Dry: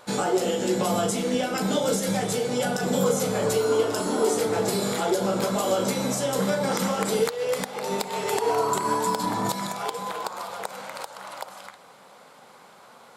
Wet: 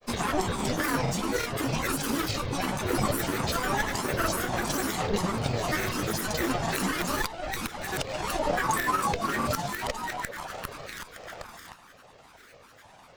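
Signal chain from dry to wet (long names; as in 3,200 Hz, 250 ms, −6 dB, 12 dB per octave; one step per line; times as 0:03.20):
lower of the sound and its delayed copy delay 0.96 ms
granular cloud, spray 32 ms, pitch spread up and down by 12 semitones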